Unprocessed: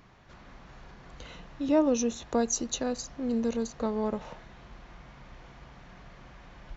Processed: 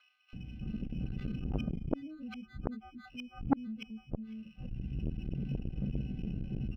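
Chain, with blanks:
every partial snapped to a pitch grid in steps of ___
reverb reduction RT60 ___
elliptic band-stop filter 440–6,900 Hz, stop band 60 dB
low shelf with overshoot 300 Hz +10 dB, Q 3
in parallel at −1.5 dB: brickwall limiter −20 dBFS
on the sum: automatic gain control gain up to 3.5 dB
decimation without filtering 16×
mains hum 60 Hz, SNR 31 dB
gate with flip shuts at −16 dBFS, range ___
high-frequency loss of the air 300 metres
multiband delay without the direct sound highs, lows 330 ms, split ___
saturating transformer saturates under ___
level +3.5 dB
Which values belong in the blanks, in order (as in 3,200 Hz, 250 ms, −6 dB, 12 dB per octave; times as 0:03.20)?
2 semitones, 1.3 s, −33 dB, 1,300 Hz, 500 Hz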